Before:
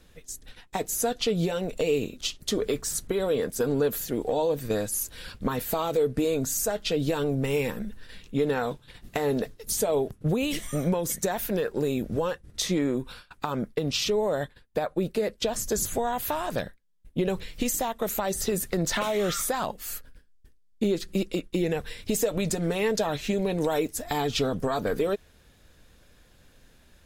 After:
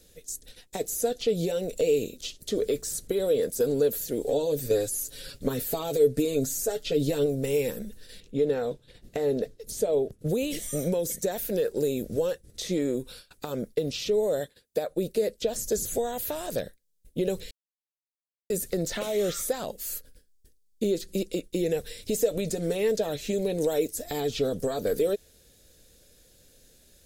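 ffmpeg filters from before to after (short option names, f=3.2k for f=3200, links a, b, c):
-filter_complex "[0:a]asettb=1/sr,asplit=3[a][b][c];[a]atrim=end=4.224[d];[b]atrim=start=4.22:end=7.26,asetpts=PTS-STARTPTS,afade=t=in:d=0.004:c=qsin,afade=t=out:st=3.036:d=0.004:c=qsin,aecho=1:1:7.2:0.65,atrim=end_sample=134064[e];[c]atrim=start=7.256[f];[d][e]acrossfade=d=0.004:c1=hsin:c2=qsin[g];[g][f]acrossfade=d=0.004:c1=qsin:c2=hsin,asettb=1/sr,asplit=3[h][i][j];[h]atrim=end=8.204[k];[i]atrim=start=8.2:end=10.19,asetpts=PTS-STARTPTS,afade=t=in:d=0.004:c=qsin,afade=t=out:st=1.986:d=0.004:c=qsin,lowpass=f=2.1k:p=1[l];[j]atrim=start=10.186[m];[k][l]acrossfade=d=0.004:c1=hsin:c2=qsin[n];[n][m]acrossfade=d=0.004:c1=qsin:c2=hsin,asettb=1/sr,asplit=3[o][p][q];[o]atrim=end=14.404[r];[p]atrim=start=14.4:end=14.89,asetpts=PTS-STARTPTS,afade=t=in:d=0.004:c=qsin,afade=t=out:st=0.486:d=0.004:c=qsin,highpass=f=160:p=1[s];[q]atrim=start=14.886[t];[r][s]acrossfade=d=0.004:c1=hsin:c2=qsin[u];[u][t]acrossfade=d=0.004:c1=qsin:c2=hsin,asplit=3[v][w][x];[v]atrim=end=17.51,asetpts=PTS-STARTPTS,afade=t=out:st=17.506:d=0.004:c=hsin[y];[w]atrim=start=17.51:end=18.5,asetpts=PTS-STARTPTS,volume=0[z];[x]atrim=start=18.5,asetpts=PTS-STARTPTS,afade=t=in:d=0.004:c=hsin[aa];[y][z][aa]concat=n=3:v=0:a=1,equalizer=f=500:t=o:w=1:g=9,equalizer=f=1k:t=o:w=1:g=-10,equalizer=f=4k:t=o:w=1:g=10,equalizer=f=8k:t=o:w=1:g=-5,acrossover=split=3100[ab][ac];[ac]acompressor=threshold=-39dB:ratio=4:attack=1:release=60[ad];[ab][ad]amix=inputs=2:normalize=0,highshelf=f=5.4k:t=q:w=1.5:g=13,volume=-4.5dB"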